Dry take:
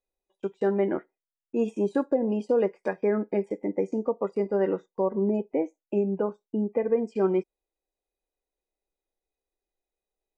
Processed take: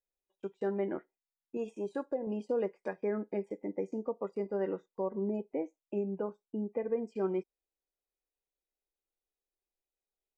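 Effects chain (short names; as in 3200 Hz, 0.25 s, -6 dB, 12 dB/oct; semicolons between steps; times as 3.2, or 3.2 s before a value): 1.57–2.27 bell 220 Hz -6 dB 1.2 oct; gain -8.5 dB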